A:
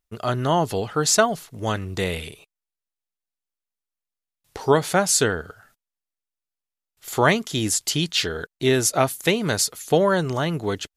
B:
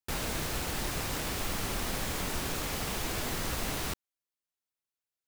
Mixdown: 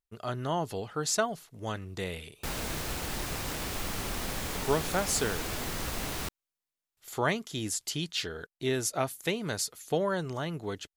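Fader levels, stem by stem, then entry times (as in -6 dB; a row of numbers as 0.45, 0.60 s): -10.5, -1.0 dB; 0.00, 2.35 s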